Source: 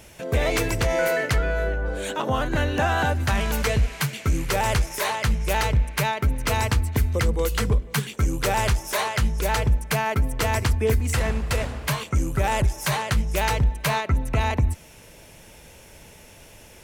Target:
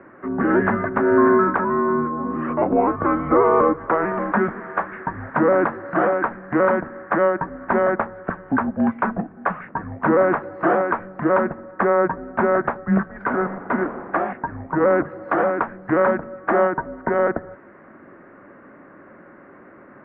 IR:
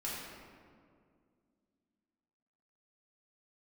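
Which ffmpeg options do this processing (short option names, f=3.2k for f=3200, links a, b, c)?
-af "highpass=f=460:t=q:w=0.5412,highpass=f=460:t=q:w=1.307,lowpass=f=2.1k:t=q:w=0.5176,lowpass=f=2.1k:t=q:w=0.7071,lowpass=f=2.1k:t=q:w=1.932,afreqshift=-210,asetrate=37044,aresample=44100,volume=8.5dB"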